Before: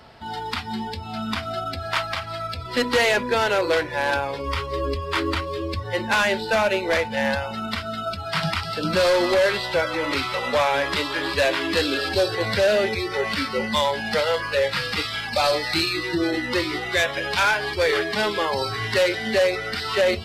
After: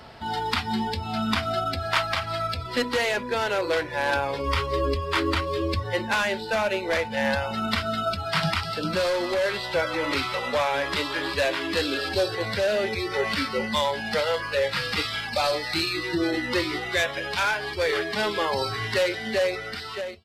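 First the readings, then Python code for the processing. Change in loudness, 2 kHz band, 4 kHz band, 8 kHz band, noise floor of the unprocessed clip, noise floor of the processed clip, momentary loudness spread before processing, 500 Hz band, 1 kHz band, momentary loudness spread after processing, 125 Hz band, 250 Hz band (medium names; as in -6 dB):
-3.0 dB, -3.0 dB, -2.5 dB, -3.5 dB, -33 dBFS, -34 dBFS, 9 LU, -3.5 dB, -2.0 dB, 3 LU, -1.0 dB, -2.0 dB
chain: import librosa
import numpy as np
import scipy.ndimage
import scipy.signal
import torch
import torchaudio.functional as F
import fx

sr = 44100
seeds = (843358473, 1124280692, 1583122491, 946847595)

y = fx.fade_out_tail(x, sr, length_s=1.28)
y = fx.rider(y, sr, range_db=5, speed_s=0.5)
y = y * 10.0 ** (-2.5 / 20.0)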